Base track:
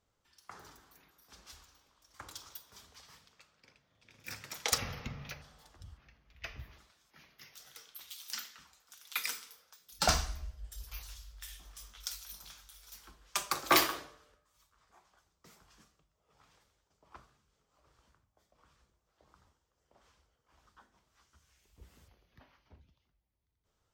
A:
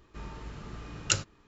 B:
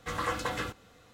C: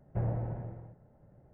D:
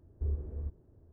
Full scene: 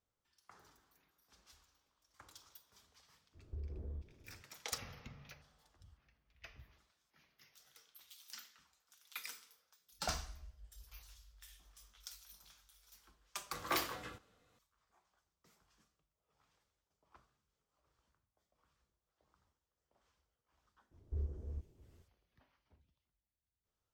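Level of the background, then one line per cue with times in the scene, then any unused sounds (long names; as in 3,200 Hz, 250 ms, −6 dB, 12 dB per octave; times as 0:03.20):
base track −11 dB
0:03.32: mix in D −2.5 dB, fades 0.05 s + downward compressor, threshold −38 dBFS
0:13.46: mix in B −15 dB
0:20.91: mix in D −6 dB
not used: A, C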